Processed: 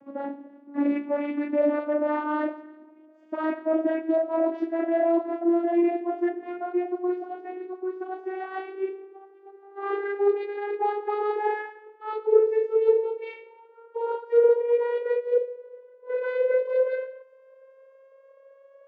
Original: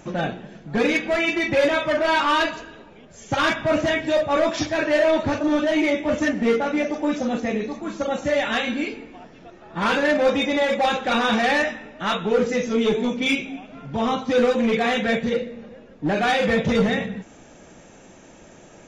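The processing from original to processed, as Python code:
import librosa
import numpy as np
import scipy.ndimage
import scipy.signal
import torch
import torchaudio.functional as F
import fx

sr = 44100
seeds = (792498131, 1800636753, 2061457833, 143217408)

y = fx.vocoder_glide(x, sr, note=61, semitones=12)
y = scipy.signal.sosfilt(scipy.signal.butter(2, 1500.0, 'lowpass', fs=sr, output='sos'), y)
y = y * 10.0 ** (-3.0 / 20.0)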